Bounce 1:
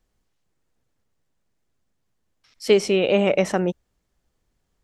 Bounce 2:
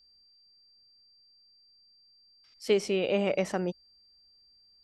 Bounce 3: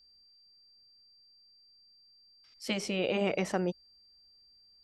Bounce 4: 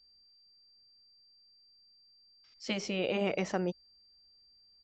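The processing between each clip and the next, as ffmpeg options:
ffmpeg -i in.wav -af "aeval=exprs='val(0)+0.00282*sin(2*PI*4700*n/s)':channel_layout=same,volume=-8.5dB" out.wav
ffmpeg -i in.wav -af "afftfilt=real='re*lt(hypot(re,im),0.398)':imag='im*lt(hypot(re,im),0.398)':win_size=1024:overlap=0.75" out.wav
ffmpeg -i in.wav -af "aresample=16000,aresample=44100,volume=-1.5dB" out.wav

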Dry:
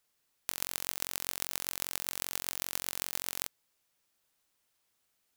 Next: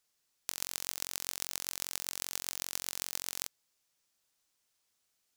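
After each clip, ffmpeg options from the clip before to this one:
ffmpeg -i in.wav -af "equalizer=frequency=6000:width_type=o:width=1.4:gain=6,volume=-4dB" out.wav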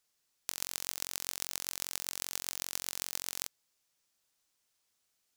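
ffmpeg -i in.wav -af anull out.wav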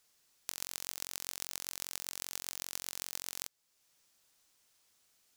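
ffmpeg -i in.wav -af "acompressor=threshold=-58dB:ratio=1.5,volume=7dB" out.wav

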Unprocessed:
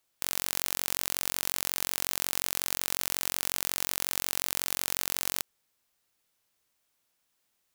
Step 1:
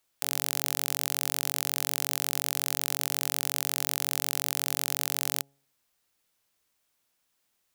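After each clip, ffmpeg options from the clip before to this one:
ffmpeg -i in.wav -af "bandreject=frequency=138.9:width_type=h:width=4,bandreject=frequency=277.8:width_type=h:width=4,bandreject=frequency=416.7:width_type=h:width=4,bandreject=frequency=555.6:width_type=h:width=4,bandreject=frequency=694.5:width_type=h:width=4,bandreject=frequency=833.4:width_type=h:width=4,volume=1dB" out.wav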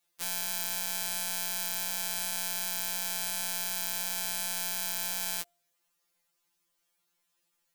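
ffmpeg -i in.wav -af "afftfilt=real='re*2.83*eq(mod(b,8),0)':imag='im*2.83*eq(mod(b,8),0)':win_size=2048:overlap=0.75" out.wav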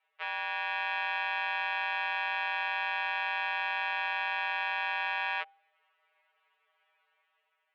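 ffmpeg -i in.wav -af "dynaudnorm=framelen=150:gausssize=9:maxgain=5dB,aeval=exprs='0.891*sin(PI/2*1.78*val(0)/0.891)':channel_layout=same,highpass=frequency=440:width_type=q:width=0.5412,highpass=frequency=440:width_type=q:width=1.307,lowpass=frequency=2700:width_type=q:width=0.5176,lowpass=frequency=2700:width_type=q:width=0.7071,lowpass=frequency=2700:width_type=q:width=1.932,afreqshift=97" out.wav

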